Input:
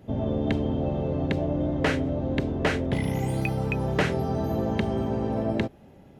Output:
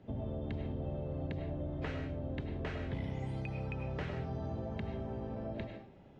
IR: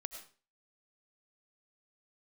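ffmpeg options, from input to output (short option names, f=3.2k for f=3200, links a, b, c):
-filter_complex "[1:a]atrim=start_sample=2205[a];[0:a][a]afir=irnorm=-1:irlink=0,acrossover=split=120[b][c];[c]acompressor=threshold=-39dB:ratio=3[d];[b][d]amix=inputs=2:normalize=0,lowpass=4.6k,volume=-3.5dB" -ar 22050 -c:a aac -b:a 32k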